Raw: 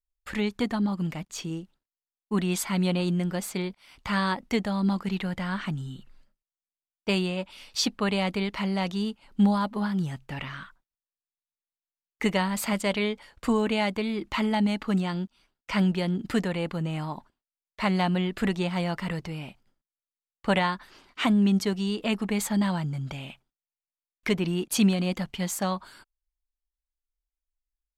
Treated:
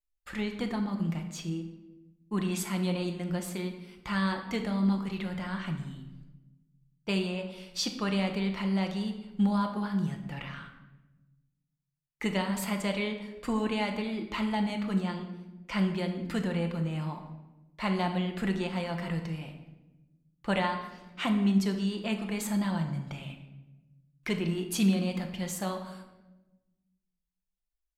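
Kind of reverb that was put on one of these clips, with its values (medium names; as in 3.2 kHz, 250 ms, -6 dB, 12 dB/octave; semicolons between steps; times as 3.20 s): simulated room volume 520 m³, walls mixed, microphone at 0.84 m; trim -6 dB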